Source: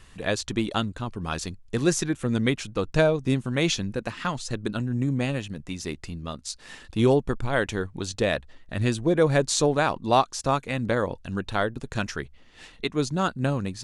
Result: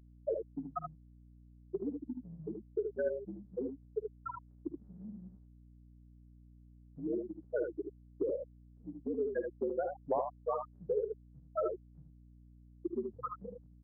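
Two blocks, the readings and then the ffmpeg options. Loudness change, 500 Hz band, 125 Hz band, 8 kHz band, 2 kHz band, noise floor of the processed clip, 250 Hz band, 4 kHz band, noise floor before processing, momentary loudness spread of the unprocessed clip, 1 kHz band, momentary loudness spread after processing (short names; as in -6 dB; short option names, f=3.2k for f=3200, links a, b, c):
-13.0 dB, -10.5 dB, -26.0 dB, under -40 dB, -25.5 dB, -59 dBFS, -16.0 dB, under -40 dB, -51 dBFS, 12 LU, -15.0 dB, 13 LU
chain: -filter_complex "[0:a]afftfilt=real='re*gte(hypot(re,im),0.398)':imag='im*gte(hypot(re,im),0.398)':win_size=1024:overlap=0.75,acompressor=threshold=-30dB:ratio=16,asplit=2[a][b];[b]aecho=0:1:54|76:0.158|0.531[c];[a][c]amix=inputs=2:normalize=0,highpass=f=380:t=q:w=0.5412,highpass=f=380:t=q:w=1.307,lowpass=f=2k:t=q:w=0.5176,lowpass=f=2k:t=q:w=0.7071,lowpass=f=2k:t=q:w=1.932,afreqshift=-68,aeval=exprs='val(0)+0.00126*(sin(2*PI*60*n/s)+sin(2*PI*2*60*n/s)/2+sin(2*PI*3*60*n/s)/3+sin(2*PI*4*60*n/s)/4+sin(2*PI*5*60*n/s)/5)':c=same,volume=1dB"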